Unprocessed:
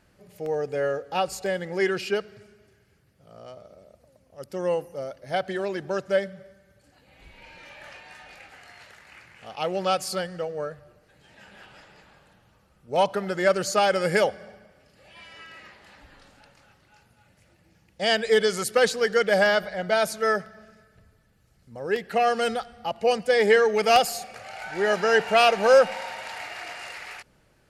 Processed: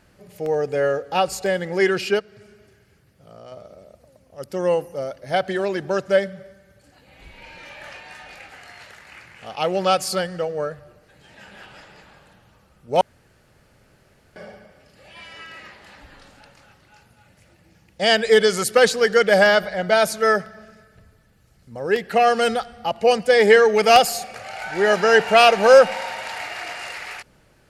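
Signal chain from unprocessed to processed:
0:02.19–0:03.52: downward compressor 2 to 1, threshold −47 dBFS, peak gain reduction 10 dB
0:13.01–0:14.36: fill with room tone
level +5.5 dB

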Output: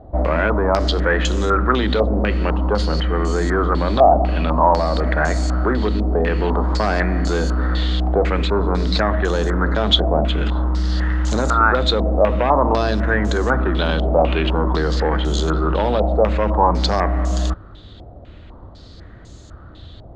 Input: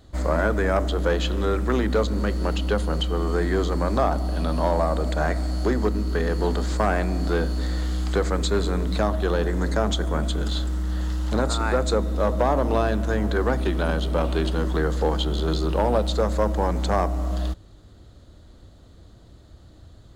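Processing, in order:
in parallel at +2 dB: compressor whose output falls as the input rises −26 dBFS
on the sum: low-pass on a step sequencer 4 Hz 720–6,700 Hz
level −1 dB

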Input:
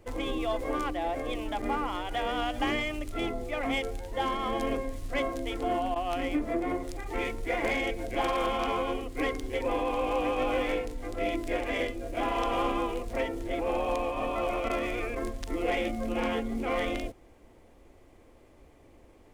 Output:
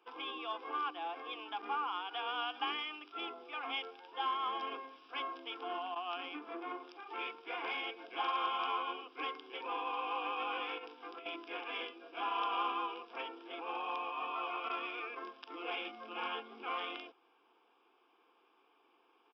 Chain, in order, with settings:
high-pass filter 440 Hz 24 dB per octave
0:10.78–0:11.26: compressor whose output falls as the input rises −37 dBFS, ratio −1
phaser with its sweep stopped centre 2,900 Hz, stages 8
downsampling to 11,025 Hz
level −1.5 dB

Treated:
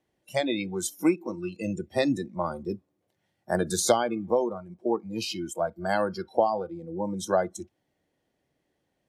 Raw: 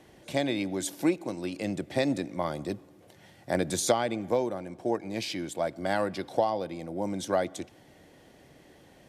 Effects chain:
noise reduction from a noise print of the clip's start 24 dB
level +3 dB

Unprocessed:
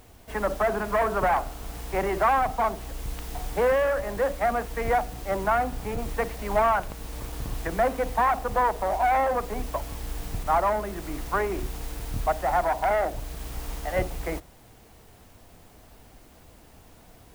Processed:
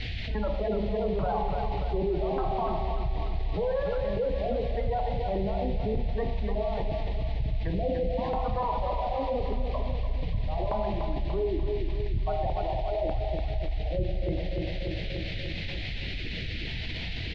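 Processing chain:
reverb reduction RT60 0.67 s
gate on every frequency bin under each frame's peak −15 dB strong
on a send at −8.5 dB: flat-topped bell 720 Hz +8.5 dB 1 octave + convolution reverb RT60 1.0 s, pre-delay 26 ms
on the sum: auto-filter low-pass square 0.84 Hz 420–2,700 Hz
noise in a band 1,900–4,300 Hz −37 dBFS
drawn EQ curve 160 Hz 0 dB, 230 Hz −7 dB, 4,000 Hz −26 dB
repeating echo 293 ms, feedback 55%, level −7 dB
envelope flattener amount 70%

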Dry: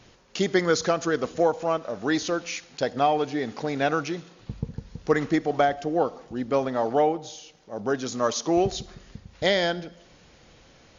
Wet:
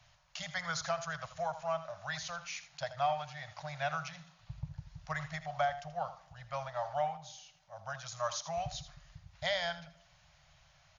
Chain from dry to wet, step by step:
Chebyshev band-stop filter 160–610 Hz, order 4
on a send: single-tap delay 81 ms −13 dB
on the sum: level −8.5 dB

